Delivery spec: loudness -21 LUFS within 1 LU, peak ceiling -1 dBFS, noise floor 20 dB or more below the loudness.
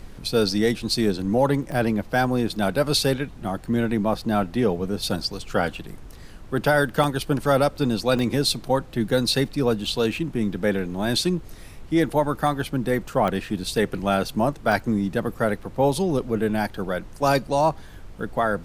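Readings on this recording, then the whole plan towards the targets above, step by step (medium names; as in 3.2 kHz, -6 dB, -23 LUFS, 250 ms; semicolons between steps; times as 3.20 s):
dropouts 7; longest dropout 1.1 ms; noise floor -42 dBFS; noise floor target -44 dBFS; loudness -23.5 LUFS; peak level -7.0 dBFS; loudness target -21.0 LUFS
-> interpolate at 1.04/1.72/7.04/8.19/12.47/13.28/14.72 s, 1.1 ms; noise print and reduce 6 dB; trim +2.5 dB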